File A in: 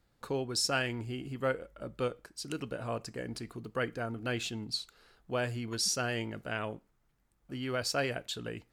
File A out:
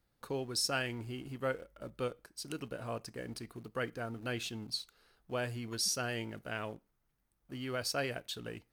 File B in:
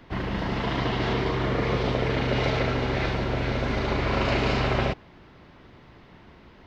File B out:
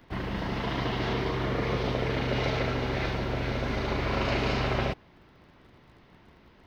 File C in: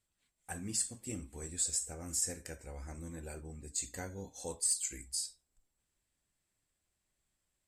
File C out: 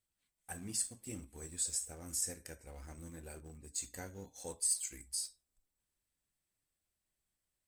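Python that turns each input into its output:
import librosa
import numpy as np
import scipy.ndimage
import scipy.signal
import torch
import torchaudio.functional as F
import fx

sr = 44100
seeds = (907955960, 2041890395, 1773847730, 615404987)

p1 = fx.high_shelf(x, sr, hz=10000.0, db=8.5)
p2 = fx.notch(p1, sr, hz=7300.0, q=8.3)
p3 = np.where(np.abs(p2) >= 10.0 ** (-41.5 / 20.0), p2, 0.0)
p4 = p2 + F.gain(torch.from_numpy(p3), -10.0).numpy()
y = F.gain(torch.from_numpy(p4), -6.0).numpy()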